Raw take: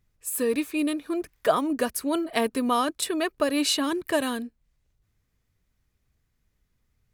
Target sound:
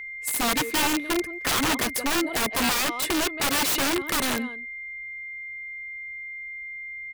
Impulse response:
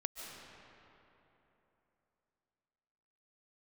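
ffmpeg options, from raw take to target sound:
-filter_complex "[0:a]asplit=2[link_01][link_02];[link_02]adelay=170,highpass=300,lowpass=3400,asoftclip=type=hard:threshold=-16.5dB,volume=-13dB[link_03];[link_01][link_03]amix=inputs=2:normalize=0,aeval=exprs='val(0)+0.0141*sin(2*PI*2100*n/s)':channel_layout=same,aeval=exprs='(mod(11.9*val(0)+1,2)-1)/11.9':channel_layout=same,volume=3dB"

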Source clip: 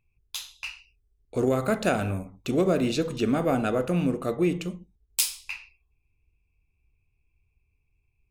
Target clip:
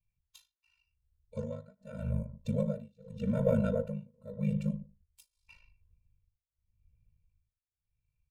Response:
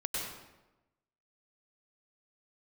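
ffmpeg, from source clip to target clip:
-filter_complex "[0:a]asettb=1/sr,asplit=3[link_01][link_02][link_03];[link_01]atrim=end=1.374[link_04];[link_02]atrim=start=1.37:end=1.79,asetpts=PTS-STARTPTS,afade=type=in:duration=0.004:curve=qsin,afade=type=out:start_time=0.416:duration=0.004:curve=qsin,lowpass=frequency=5300:width_type=q:width=1.5[link_05];[link_03]atrim=start=1.786[link_06];[link_04][link_05]acrossfade=duration=0.004:curve1=hsin:curve2=qsin[link_07];[link_07][link_06]acrossfade=duration=0.004:curve1=qsin:curve2=hsin,asplit=2[link_08][link_09];[link_09]adelay=92,lowpass=frequency=1600:poles=1,volume=-19dB,asplit=2[link_10][link_11];[link_11]adelay=92,lowpass=frequency=1600:poles=1,volume=0.26[link_12];[link_08][link_10][link_12]amix=inputs=3:normalize=0,aeval=exprs='val(0)*sin(2*PI*26*n/s)':channel_layout=same,acrossover=split=590[link_13][link_14];[link_13]dynaudnorm=framelen=250:gausssize=13:maxgain=15.5dB[link_15];[link_15][link_14]amix=inputs=2:normalize=0,tremolo=f=0.85:d=0.99,afftfilt=real='re*eq(mod(floor(b*sr/1024/220),2),0)':imag='im*eq(mod(floor(b*sr/1024/220),2),0)':win_size=1024:overlap=0.75,volume=-7dB"

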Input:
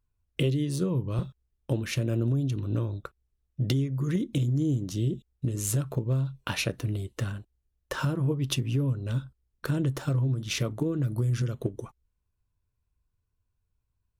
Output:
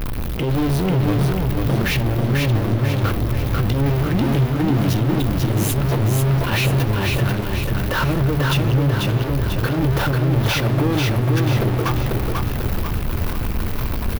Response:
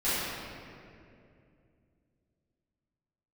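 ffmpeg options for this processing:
-af "aeval=exprs='val(0)+0.5*0.0447*sgn(val(0))':channel_layout=same,equalizer=frequency=7500:width_type=o:width=1.1:gain=-14,bandreject=frequency=50:width_type=h:width=6,bandreject=frequency=100:width_type=h:width=6,bandreject=frequency=150:width_type=h:width=6,alimiter=limit=-23dB:level=0:latency=1:release=52,flanger=delay=9.3:depth=7.9:regen=-77:speed=0.4:shape=sinusoidal,aeval=exprs='0.282*sin(PI/2*7.94*val(0)/0.282)':channel_layout=same,aecho=1:1:492|984|1476|1968|2460|2952:0.708|0.34|0.163|0.0783|0.0376|0.018,volume=-6dB"

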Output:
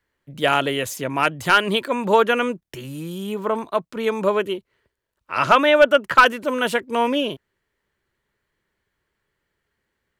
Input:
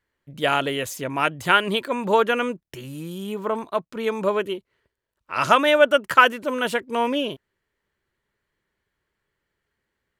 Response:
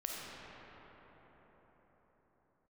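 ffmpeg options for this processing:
-filter_complex "[0:a]asettb=1/sr,asplit=3[link_01][link_02][link_03];[link_01]atrim=end=5.394[link_04];[link_02]atrim=start=5.39:end=6.26,asetpts=PTS-STARTPTS,afade=type=in:duration=0.004:curve=qsin,afade=type=out:start_time=0.866:duration=0.004:curve=qsin,acrossover=split=4200[link_05][link_06];[link_06]acompressor=threshold=-46dB:ratio=4:attack=1:release=60[link_07];[link_05][link_07]amix=inputs=2:normalize=0[link_08];[link_03]atrim=start=6.256[link_09];[link_04][link_08]acrossfade=duration=0.004:curve1=hsin:curve2=qsin[link_10];[link_10][link_09]acrossfade=duration=0.004:curve1=qsin:curve2=hsin,acrossover=split=140|4700[link_11][link_12][link_13];[link_12]aeval=exprs='clip(val(0),-1,0.398)':channel_layout=same[link_14];[link_11][link_14][link_13]amix=inputs=3:normalize=0,volume=2.5dB"

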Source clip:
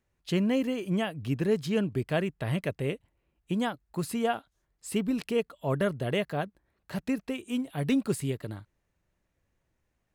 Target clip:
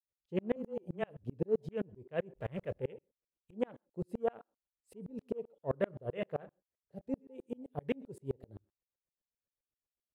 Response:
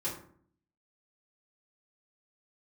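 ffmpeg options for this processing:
-filter_complex "[0:a]asettb=1/sr,asplit=3[link_01][link_02][link_03];[link_01]atrim=end=2.354[link_04];[link_02]atrim=start=2.35:end=2.78,asetpts=PTS-STARTPTS,afade=type=in:duration=0.004:curve=qsin,afade=type=out:start_time=0.426:duration=0.004:curve=qsin,aeval=exprs='val(0)+0.5*0.0168*sgn(val(0))':channel_layout=same[link_05];[link_03]atrim=start=2.776[link_06];[link_04][link_05]acrossfade=duration=0.004:curve1=hsin:curve2=qsin[link_07];[link_07][link_06]acrossfade=duration=0.004:curve1=qsin:curve2=hsin,aecho=1:1:120:0.0708,afwtdn=0.0126,equalizer=frequency=490:width=2.3:gain=9.5,asplit=3[link_08][link_09][link_10];[link_08]afade=type=out:start_time=5.92:duration=0.02[link_11];[link_09]asplit=2[link_12][link_13];[link_13]adelay=35,volume=-11dB[link_14];[link_12][link_14]amix=inputs=2:normalize=0,afade=type=in:start_time=5.92:duration=0.02,afade=type=out:start_time=6.45:duration=0.02[link_15];[link_10]afade=type=in:start_time=6.45:duration=0.02[link_16];[link_11][link_15][link_16]amix=inputs=3:normalize=0,adynamicequalizer=threshold=0.0112:dfrequency=290:dqfactor=2:tfrequency=290:tqfactor=2:attack=5:release=100:ratio=0.375:range=2:mode=cutabove:tftype=bell,asplit=2[link_17][link_18];[link_18]highpass=frequency=220:width=0.5412,highpass=frequency=220:width=1.3066[link_19];[1:a]atrim=start_sample=2205,afade=type=out:start_time=0.2:duration=0.01,atrim=end_sample=9261[link_20];[link_19][link_20]afir=irnorm=-1:irlink=0,volume=-23.5dB[link_21];[link_17][link_21]amix=inputs=2:normalize=0,asettb=1/sr,asplit=3[link_22][link_23][link_24];[link_22]atrim=end=0.564[link_25];[link_23]atrim=start=0.56:end=1.24,asetpts=PTS-STARTPTS,afade=type=in:duration=0.004:curve=qsin,afade=type=out:start_time=0.676:duration=0.004:curve=qsin,afreqshift=-15[link_26];[link_24]atrim=start=1.236[link_27];[link_25][link_26]acrossfade=duration=0.004:curve1=hsin:curve2=qsin[link_28];[link_28][link_27]acrossfade=duration=0.004:curve1=qsin:curve2=hsin,aeval=exprs='val(0)*pow(10,-36*if(lt(mod(-7.7*n/s,1),2*abs(-7.7)/1000),1-mod(-7.7*n/s,1)/(2*abs(-7.7)/1000),(mod(-7.7*n/s,1)-2*abs(-7.7)/1000)/(1-2*abs(-7.7)/1000))/20)':channel_layout=same,volume=-3dB"

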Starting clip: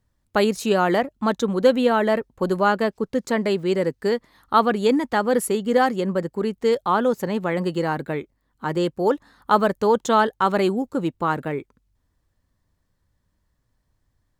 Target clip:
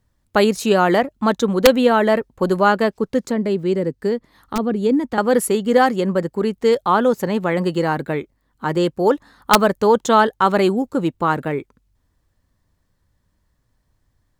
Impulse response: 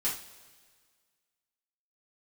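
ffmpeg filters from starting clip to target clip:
-filter_complex "[0:a]aeval=exprs='(mod(1.78*val(0)+1,2)-1)/1.78':channel_layout=same,asettb=1/sr,asplit=3[link_01][link_02][link_03];[link_01]atrim=end=3.234[link_04];[link_02]atrim=start=3.23:end=5.18,asetpts=PTS-STARTPTS,afade=type=in:duration=0.004:curve=qsin,afade=type=out:start_time=1.946:duration=0.004:curve=qsin,acrossover=split=460[link_05][link_06];[link_06]acompressor=threshold=-39dB:ratio=2.5[link_07];[link_05][link_07]amix=inputs=2:normalize=0[link_08];[link_03]atrim=start=5.176[link_09];[link_04][link_08]acrossfade=duration=0.004:curve1=hsin:curve2=qsin[link_10];[link_10][link_09]acrossfade=duration=0.004:curve1=qsin:curve2=hsin,volume=4dB"

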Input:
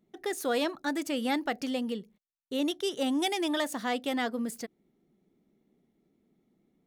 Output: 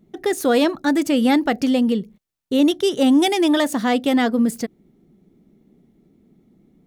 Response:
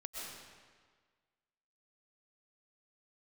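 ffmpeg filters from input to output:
-af "lowshelf=frequency=310:gain=11,volume=8.5dB"

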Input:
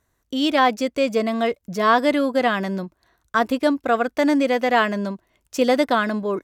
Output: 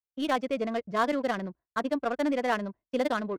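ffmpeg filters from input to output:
ffmpeg -i in.wav -af "adynamicsmooth=sensitivity=2:basefreq=1500,atempo=1.9,agate=range=-33dB:threshold=-33dB:ratio=3:detection=peak,volume=-8.5dB" out.wav

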